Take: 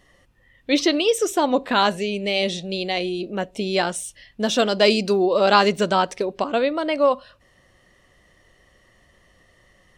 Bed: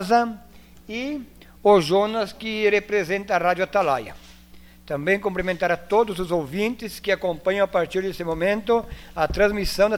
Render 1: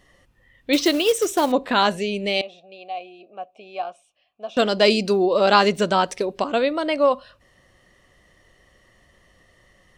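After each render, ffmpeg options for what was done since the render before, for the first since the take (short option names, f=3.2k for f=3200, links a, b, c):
-filter_complex "[0:a]asettb=1/sr,asplit=3[a][b][c];[a]atrim=end=0.734[d];[b]atrim=start=0.73:end=1.52,asetpts=PTS-STARTPTS,afade=t=in:d=0.004:c=qsin,afade=t=out:st=0.786:d=0.004:c=qsin,acrusher=bits=4:mode=log:mix=0:aa=0.000001[e];[c]atrim=start=1.516[f];[d][e]acrossfade=d=0.004:c1=hsin:c2=qsin[g];[g][f]acrossfade=d=0.004:c1=qsin:c2=hsin,asettb=1/sr,asplit=3[h][i][j];[h]atrim=end=2.414[k];[i]atrim=start=2.41:end=4.57,asetpts=PTS-STARTPTS,afade=t=in:d=0.004:c=qsin,afade=t=out:st=2.156:d=0.004:c=qsin,asplit=3[l][m][n];[l]bandpass=f=730:t=q:w=8,volume=0dB[o];[m]bandpass=f=1.09k:t=q:w=8,volume=-6dB[p];[n]bandpass=f=2.44k:t=q:w=8,volume=-9dB[q];[o][p][q]amix=inputs=3:normalize=0[r];[j]atrim=start=4.566[s];[k][r]acrossfade=d=0.004:c1=hsin:c2=qsin[t];[t][s]acrossfade=d=0.004:c1=qsin:c2=hsin,asettb=1/sr,asplit=3[u][v][w];[u]atrim=end=6.024[x];[v]atrim=start=6.02:end=6.95,asetpts=PTS-STARTPTS,afade=t=in:d=0.004:c=qsin,afade=t=out:st=0.926:d=0.004:c=qsin,highshelf=f=5.2k:g=5[y];[w]atrim=start=6.946[z];[x][y]acrossfade=d=0.004:c1=hsin:c2=qsin[aa];[aa][z]acrossfade=d=0.004:c1=qsin:c2=hsin"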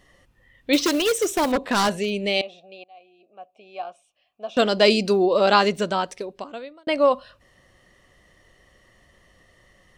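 -filter_complex "[0:a]asettb=1/sr,asplit=3[a][b][c];[a]atrim=end=0.864[d];[b]atrim=start=0.86:end=2.28,asetpts=PTS-STARTPTS,afade=t=in:d=0.004:c=qsin,afade=t=out:st=1.416:d=0.004:c=qsin,aeval=exprs='0.188*(abs(mod(val(0)/0.188+3,4)-2)-1)':c=same[e];[c]atrim=start=2.276[f];[d][e]acrossfade=d=0.004:c1=hsin:c2=qsin[g];[g][f]acrossfade=d=0.004:c1=qsin:c2=hsin,asplit=3[h][i][j];[h]atrim=end=2.84,asetpts=PTS-STARTPTS,afade=t=out:st=2.836:d=0.004:c=hsin:silence=0.0749894[k];[i]atrim=start=2.84:end=6.87,asetpts=PTS-STARTPTS,afade=t=in:d=1.63:silence=0.0749894,afade=t=out:st=2.48:d=1.55[l];[j]atrim=start=6.87,asetpts=PTS-STARTPTS,afade=t=in:d=0.004:c=hsin[m];[k][l][m]concat=n=3:v=0:a=1"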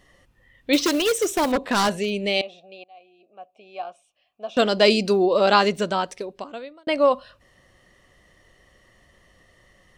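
-af anull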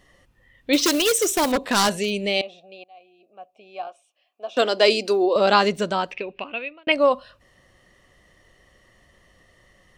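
-filter_complex "[0:a]asettb=1/sr,asplit=3[a][b][c];[a]atrim=end=0.794[d];[b]atrim=start=0.79:end=2.26,asetpts=PTS-STARTPTS,afade=t=in:d=0.004:c=qsin,afade=t=out:st=1.466:d=0.004:c=qsin,highshelf=f=3.6k:g=7.5[e];[c]atrim=start=2.256[f];[d][e]acrossfade=d=0.004:c1=hsin:c2=qsin[g];[g][f]acrossfade=d=0.004:c1=qsin:c2=hsin,asettb=1/sr,asplit=3[h][i][j];[h]atrim=end=3.874[k];[i]atrim=start=3.87:end=5.36,asetpts=PTS-STARTPTS,afade=t=in:d=0.004:c=qsin,afade=t=out:st=1.486:d=0.004:c=qsin,highpass=f=280:w=0.5412,highpass=f=280:w=1.3066[l];[j]atrim=start=5.356[m];[k][l]acrossfade=d=0.004:c1=hsin:c2=qsin[n];[n][m]acrossfade=d=0.004:c1=qsin:c2=hsin,asettb=1/sr,asplit=3[o][p][q];[o]atrim=end=6.114[r];[p]atrim=start=6.11:end=6.92,asetpts=PTS-STARTPTS,afade=t=in:d=0.004:c=qsin,afade=t=out:st=0.806:d=0.004:c=qsin,lowpass=f=2.6k:t=q:w=11[s];[q]atrim=start=6.916[t];[r][s]acrossfade=d=0.004:c1=hsin:c2=qsin[u];[u][t]acrossfade=d=0.004:c1=qsin:c2=hsin"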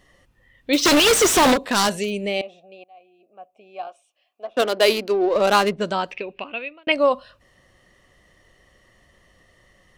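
-filter_complex "[0:a]asettb=1/sr,asplit=3[a][b][c];[a]atrim=end=0.854[d];[b]atrim=start=0.85:end=1.54,asetpts=PTS-STARTPTS,afade=t=in:d=0.004:c=qsin,afade=t=out:st=0.686:d=0.004:c=qsin,asplit=2[e][f];[f]highpass=f=720:p=1,volume=37dB,asoftclip=type=tanh:threshold=-8dB[g];[e][g]amix=inputs=2:normalize=0,lowpass=f=3.8k:p=1,volume=-6dB[h];[c]atrim=start=1.536[i];[d][h]acrossfade=d=0.004:c1=hsin:c2=qsin[j];[j][i]acrossfade=d=0.004:c1=qsin:c2=hsin,asettb=1/sr,asplit=3[k][l][m];[k]atrim=end=2.044[n];[l]atrim=start=2.04:end=3.79,asetpts=PTS-STARTPTS,afade=t=in:d=0.004:c=qsin,afade=t=out:st=1.746:d=0.004:c=qsin,equalizer=f=4.2k:t=o:w=1.1:g=-8.5[o];[m]atrim=start=3.786[p];[n][o]acrossfade=d=0.004:c1=hsin:c2=qsin[q];[q][p]acrossfade=d=0.004:c1=qsin:c2=hsin,asettb=1/sr,asplit=3[r][s][t];[r]atrim=end=4.454[u];[s]atrim=start=4.45:end=5.81,asetpts=PTS-STARTPTS,afade=t=in:d=0.004:c=qsin,afade=t=out:st=1.356:d=0.004:c=qsin,adynamicsmooth=sensitivity=2.5:basefreq=1k[v];[t]atrim=start=5.806[w];[u][v]acrossfade=d=0.004:c1=hsin:c2=qsin[x];[x][w]acrossfade=d=0.004:c1=qsin:c2=hsin"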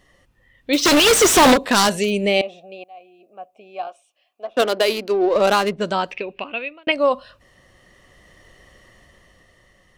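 -af "dynaudnorm=f=210:g=13:m=11.5dB,alimiter=limit=-6dB:level=0:latency=1:release=397"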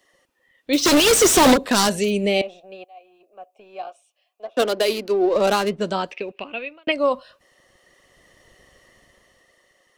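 -filter_complex "[0:a]acrossover=split=350|560|4100[a][b][c][d];[a]aeval=exprs='sgn(val(0))*max(abs(val(0))-0.00158,0)':c=same[e];[c]flanger=delay=0.2:depth=8.1:regen=55:speed=0.62:shape=triangular[f];[e][b][f][d]amix=inputs=4:normalize=0"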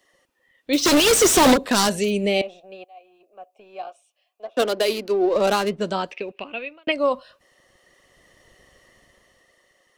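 -af "volume=-1dB"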